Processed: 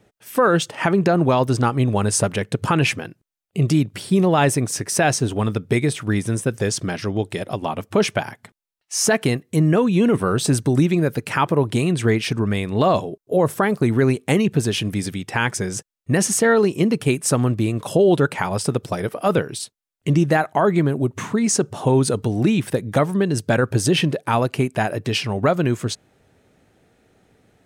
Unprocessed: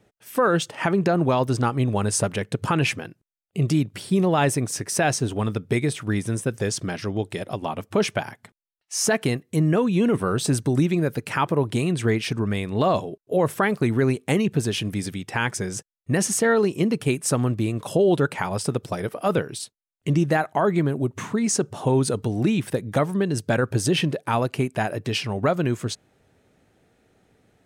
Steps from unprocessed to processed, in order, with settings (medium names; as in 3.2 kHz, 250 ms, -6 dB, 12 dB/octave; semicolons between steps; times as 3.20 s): 13.07–13.88 s: peaking EQ 2.4 kHz -5 dB 1.5 oct; trim +3.5 dB